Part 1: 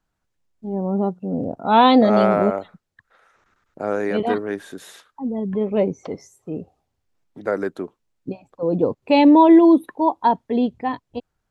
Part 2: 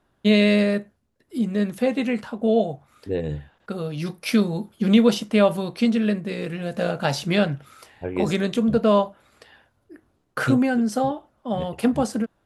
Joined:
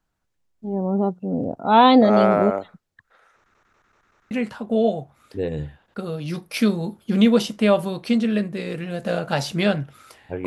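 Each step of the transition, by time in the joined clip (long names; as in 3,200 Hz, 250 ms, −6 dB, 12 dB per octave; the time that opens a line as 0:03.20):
part 1
0:03.36: stutter in place 0.19 s, 5 plays
0:04.31: continue with part 2 from 0:02.03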